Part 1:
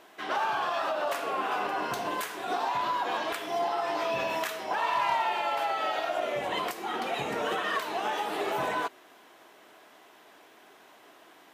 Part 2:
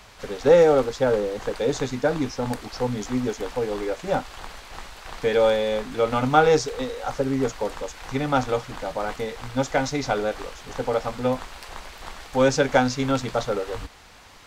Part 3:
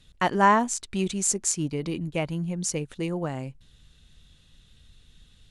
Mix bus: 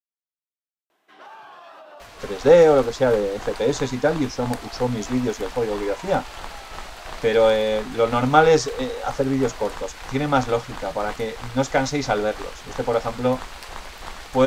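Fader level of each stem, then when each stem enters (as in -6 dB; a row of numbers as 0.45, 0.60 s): -14.0 dB, +2.5 dB, off; 0.90 s, 2.00 s, off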